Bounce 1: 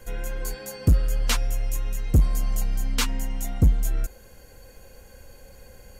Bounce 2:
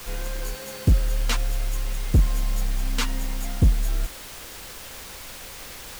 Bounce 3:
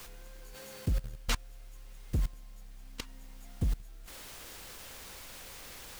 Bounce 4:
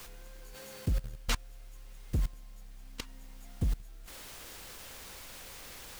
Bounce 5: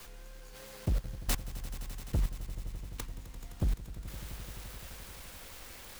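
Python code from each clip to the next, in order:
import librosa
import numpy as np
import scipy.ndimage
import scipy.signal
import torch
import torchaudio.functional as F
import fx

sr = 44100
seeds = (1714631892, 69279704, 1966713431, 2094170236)

y1 = fx.quant_dither(x, sr, seeds[0], bits=6, dither='triangular')
y1 = fx.high_shelf(y1, sr, hz=6100.0, db=-7.0)
y2 = fx.level_steps(y1, sr, step_db=21)
y2 = F.gain(torch.from_numpy(y2), -5.5).numpy()
y3 = y2
y4 = fx.self_delay(y3, sr, depth_ms=0.87)
y4 = fx.echo_swell(y4, sr, ms=86, loudest=5, wet_db=-17)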